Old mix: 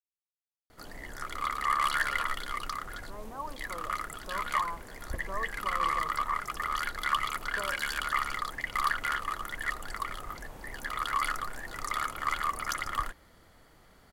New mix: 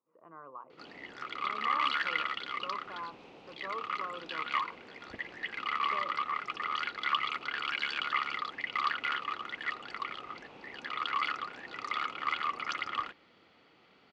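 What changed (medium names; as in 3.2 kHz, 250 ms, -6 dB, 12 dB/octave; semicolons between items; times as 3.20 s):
speech: entry -1.65 s; master: add cabinet simulation 230–4400 Hz, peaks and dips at 630 Hz -6 dB, 1 kHz -4 dB, 1.7 kHz -7 dB, 2.6 kHz +9 dB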